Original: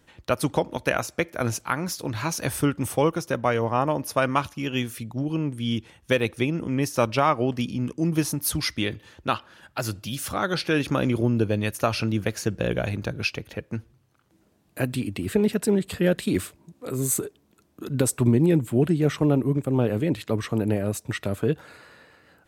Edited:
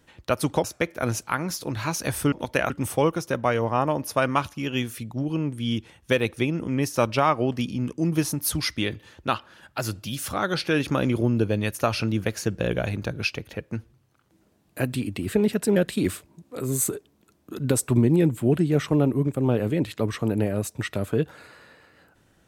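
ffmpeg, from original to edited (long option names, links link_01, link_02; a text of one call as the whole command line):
ffmpeg -i in.wav -filter_complex "[0:a]asplit=5[link_01][link_02][link_03][link_04][link_05];[link_01]atrim=end=0.642[link_06];[link_02]atrim=start=1.018:end=2.702[link_07];[link_03]atrim=start=0.638:end=1.022[link_08];[link_04]atrim=start=2.698:end=15.762[link_09];[link_05]atrim=start=16.058[link_10];[link_06][link_07]acrossfade=duration=0.004:curve1=hsin:curve2=hsin[link_11];[link_11][link_08]acrossfade=duration=0.004:curve1=hsin:curve2=hsin[link_12];[link_12][link_09]acrossfade=duration=0.004:curve1=hsin:curve2=hsin[link_13];[link_13][link_10]acrossfade=duration=0.004:curve1=hsin:curve2=hsin" out.wav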